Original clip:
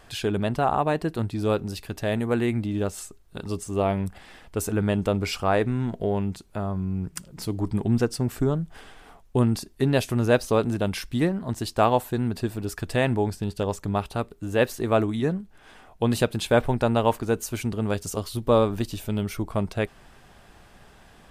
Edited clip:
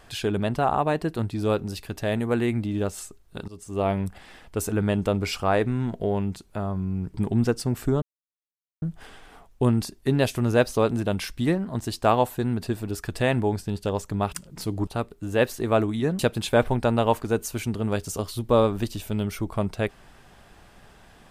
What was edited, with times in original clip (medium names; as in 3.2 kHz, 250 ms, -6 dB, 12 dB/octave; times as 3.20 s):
3.48–3.88 s: fade in, from -20.5 dB
7.14–7.68 s: move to 14.07 s
8.56 s: insert silence 0.80 s
15.39–16.17 s: delete